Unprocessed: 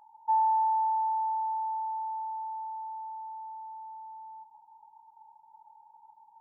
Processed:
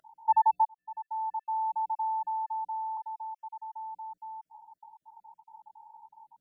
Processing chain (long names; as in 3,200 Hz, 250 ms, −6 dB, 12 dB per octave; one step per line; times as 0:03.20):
time-frequency cells dropped at random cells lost 33%
0:00.67–0:01.92: fade in
0:02.97–0:03.73: Butterworth high-pass 820 Hz
level +4.5 dB